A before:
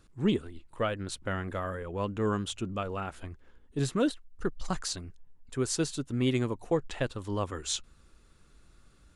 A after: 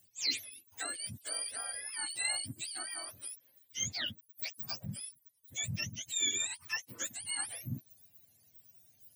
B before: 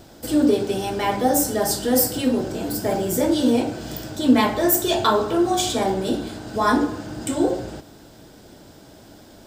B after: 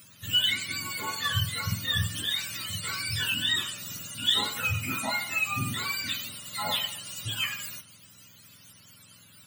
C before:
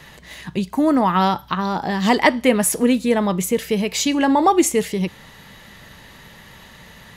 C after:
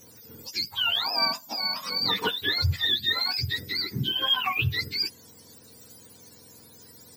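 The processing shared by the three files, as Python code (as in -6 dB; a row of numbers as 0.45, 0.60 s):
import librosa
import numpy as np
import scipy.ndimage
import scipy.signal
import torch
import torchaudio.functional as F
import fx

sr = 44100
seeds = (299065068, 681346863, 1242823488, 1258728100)

y = fx.octave_mirror(x, sr, pivot_hz=940.0)
y = scipy.signal.lfilter([1.0, -0.9], [1.0], y)
y = F.gain(torch.from_numpy(y), 4.5).numpy()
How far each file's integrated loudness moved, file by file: -4.0, -7.0, -6.5 LU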